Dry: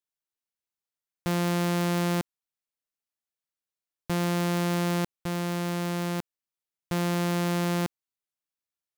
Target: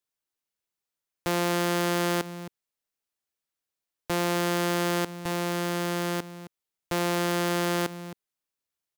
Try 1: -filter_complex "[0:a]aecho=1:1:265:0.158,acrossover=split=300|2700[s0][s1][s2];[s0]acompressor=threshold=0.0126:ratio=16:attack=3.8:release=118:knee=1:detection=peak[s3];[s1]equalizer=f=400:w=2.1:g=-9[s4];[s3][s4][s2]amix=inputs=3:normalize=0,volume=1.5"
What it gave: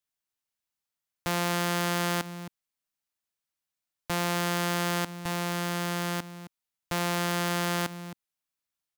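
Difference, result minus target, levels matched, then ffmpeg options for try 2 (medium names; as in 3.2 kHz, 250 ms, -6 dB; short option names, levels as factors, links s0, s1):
500 Hz band -3.5 dB
-filter_complex "[0:a]aecho=1:1:265:0.158,acrossover=split=300|2700[s0][s1][s2];[s0]acompressor=threshold=0.0126:ratio=16:attack=3.8:release=118:knee=1:detection=peak[s3];[s1]equalizer=f=400:w=2.1:g=2.5[s4];[s3][s4][s2]amix=inputs=3:normalize=0,volume=1.5"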